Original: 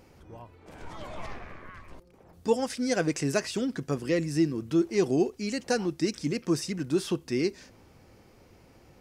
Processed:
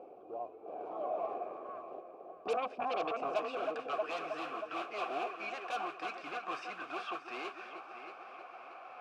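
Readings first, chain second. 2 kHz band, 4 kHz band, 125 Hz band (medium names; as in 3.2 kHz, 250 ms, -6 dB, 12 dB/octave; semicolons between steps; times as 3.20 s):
-5.0 dB, -9.5 dB, -31.5 dB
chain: modulation noise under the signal 12 dB; band-pass sweep 400 Hz -> 1.5 kHz, 3.01–3.61 s; reverse; upward compressor, threshold -53 dBFS; reverse; multi-head delay 316 ms, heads first and second, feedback 46%, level -16 dB; in parallel at -5 dB: sine folder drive 16 dB, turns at -24 dBFS; on the sum: vowel filter a; trim +6.5 dB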